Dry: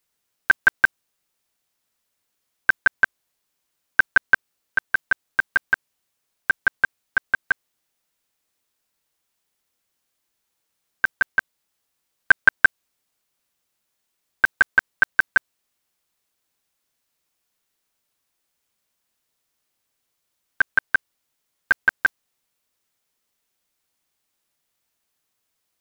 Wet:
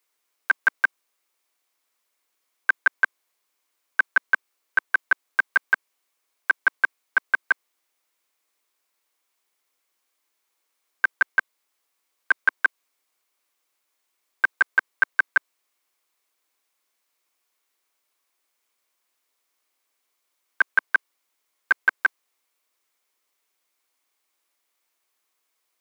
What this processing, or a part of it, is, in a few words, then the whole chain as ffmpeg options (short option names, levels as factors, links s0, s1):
laptop speaker: -af "highpass=f=290:w=0.5412,highpass=f=290:w=1.3066,equalizer=f=1100:t=o:w=0.42:g=5,equalizer=f=2200:t=o:w=0.25:g=5,alimiter=limit=0.376:level=0:latency=1:release=13"